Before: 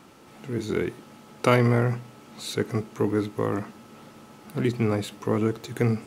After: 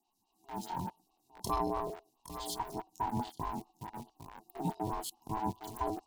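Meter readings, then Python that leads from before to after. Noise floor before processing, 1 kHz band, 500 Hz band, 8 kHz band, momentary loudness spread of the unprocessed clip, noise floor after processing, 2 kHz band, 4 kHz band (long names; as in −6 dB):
−50 dBFS, −2.0 dB, −16.0 dB, −4.0 dB, 15 LU, −78 dBFS, −20.5 dB, −9.5 dB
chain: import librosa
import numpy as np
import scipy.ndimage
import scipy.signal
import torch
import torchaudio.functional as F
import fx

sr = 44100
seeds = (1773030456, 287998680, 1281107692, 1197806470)

p1 = fx.bin_expand(x, sr, power=1.5)
p2 = scipy.signal.sosfilt(scipy.signal.cheby1(5, 1.0, [590.0, 3300.0], 'bandstop', fs=sr, output='sos'), p1)
p3 = fx.high_shelf(p2, sr, hz=7800.0, db=5.0)
p4 = p3 + 10.0 ** (-13.0 / 20.0) * np.pad(p3, (int(810 * sr / 1000.0), 0))[:len(p3)]
p5 = fx.quant_companded(p4, sr, bits=2)
p6 = p4 + (p5 * librosa.db_to_amplitude(-12.0))
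p7 = fx.highpass(p6, sr, hz=400.0, slope=6)
p8 = p7 * np.sin(2.0 * np.pi * 540.0 * np.arange(len(p7)) / sr)
p9 = fx.buffer_crackle(p8, sr, first_s=0.65, period_s=0.1, block=1024, kind='repeat')
y = fx.stagger_phaser(p9, sr, hz=4.7)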